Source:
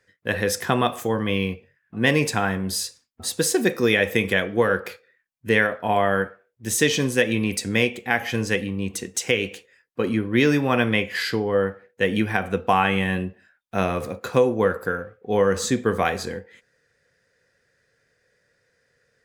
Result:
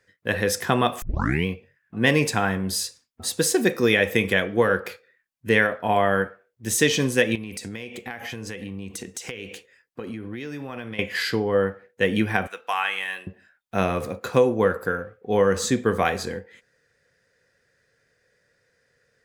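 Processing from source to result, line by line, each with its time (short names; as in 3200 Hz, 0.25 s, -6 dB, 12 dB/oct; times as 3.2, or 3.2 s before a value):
1.02 tape start 0.44 s
7.35–10.99 compressor 20:1, threshold -29 dBFS
12.47–13.27 Bessel high-pass 1400 Hz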